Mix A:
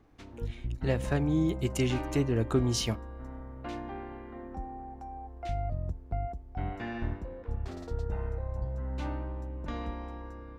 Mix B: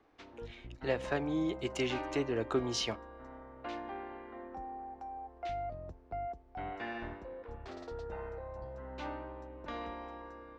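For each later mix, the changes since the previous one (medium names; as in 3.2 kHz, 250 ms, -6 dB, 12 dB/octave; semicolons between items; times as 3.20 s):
master: add three-band isolator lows -15 dB, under 320 Hz, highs -23 dB, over 6.2 kHz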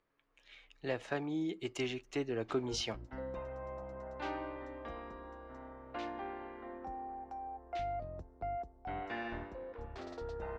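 speech -3.0 dB; background: entry +2.30 s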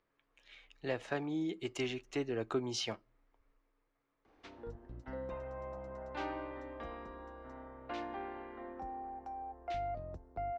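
background: entry +1.95 s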